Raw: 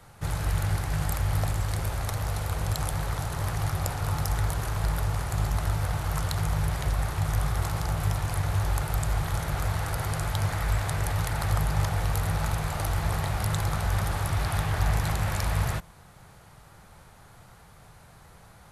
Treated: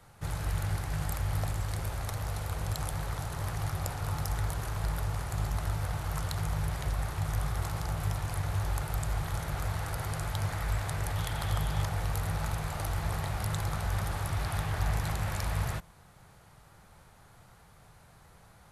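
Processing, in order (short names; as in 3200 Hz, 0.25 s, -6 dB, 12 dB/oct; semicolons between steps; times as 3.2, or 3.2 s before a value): 11.16–11.83 bell 3300 Hz +10.5 dB 0.24 oct; gain -5 dB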